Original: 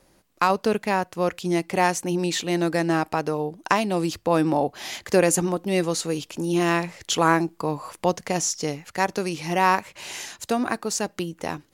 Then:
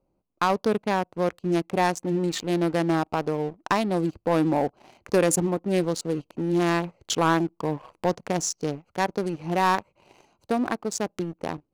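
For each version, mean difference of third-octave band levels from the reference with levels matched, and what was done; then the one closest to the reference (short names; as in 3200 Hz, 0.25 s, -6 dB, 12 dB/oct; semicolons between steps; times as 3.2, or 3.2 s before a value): 5.5 dB: Wiener smoothing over 25 samples; sample leveller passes 2; gain -7.5 dB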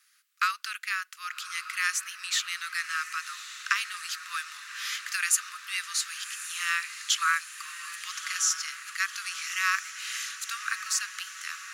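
20.0 dB: steep high-pass 1200 Hz 96 dB/oct; on a send: diffused feedback echo 1.168 s, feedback 68%, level -11.5 dB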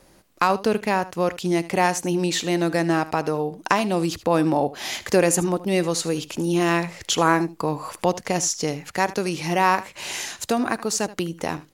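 2.0 dB: in parallel at +0.5 dB: compressor, threshold -31 dBFS, peak gain reduction 16.5 dB; on the sum: echo 77 ms -17 dB; gain -1 dB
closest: third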